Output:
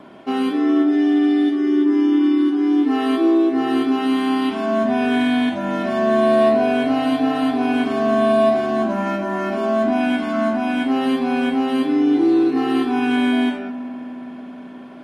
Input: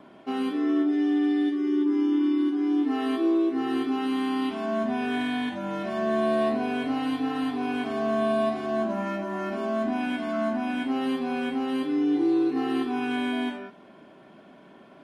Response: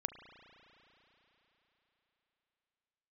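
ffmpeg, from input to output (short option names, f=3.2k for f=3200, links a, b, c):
-filter_complex "[0:a]asplit=2[a][b];[1:a]atrim=start_sample=2205,asetrate=28665,aresample=44100[c];[b][c]afir=irnorm=-1:irlink=0,volume=-2.5dB[d];[a][d]amix=inputs=2:normalize=0,volume=2.5dB"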